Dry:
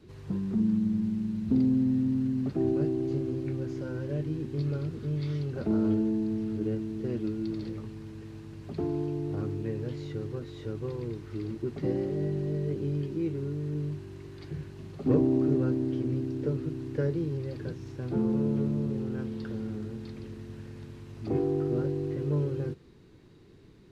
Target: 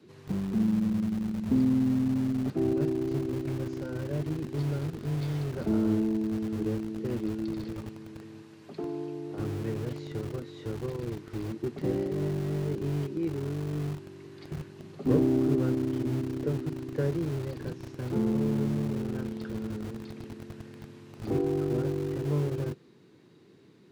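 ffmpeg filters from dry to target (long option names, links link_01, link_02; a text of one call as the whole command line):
ffmpeg -i in.wav -filter_complex "[0:a]asettb=1/sr,asplit=3[link_01][link_02][link_03];[link_01]atrim=end=8.424[link_04];[link_02]atrim=start=8.42:end=9.39,asetpts=PTS-STARTPTS,afade=type=in:duration=0.004:curve=qsin,afade=type=out:start_time=0.966:duration=0.004:curve=qsin,lowshelf=frequency=230:gain=-10.5[link_05];[link_03]atrim=start=9.386[link_06];[link_04][link_05]acrossfade=duration=0.004:curve1=hsin:curve2=qsin[link_07];[link_07][link_06]acrossfade=duration=0.004:curve1=qsin:curve2=hsin,acrossover=split=120|2500[link_08][link_09][link_10];[link_08]acrusher=bits=6:mix=0:aa=0.000001[link_11];[link_11][link_09][link_10]amix=inputs=3:normalize=0" out.wav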